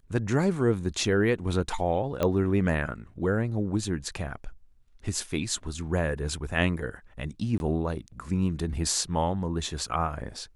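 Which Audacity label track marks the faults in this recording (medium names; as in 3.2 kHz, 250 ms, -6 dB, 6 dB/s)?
2.230000	2.230000	pop -13 dBFS
7.580000	7.600000	dropout 21 ms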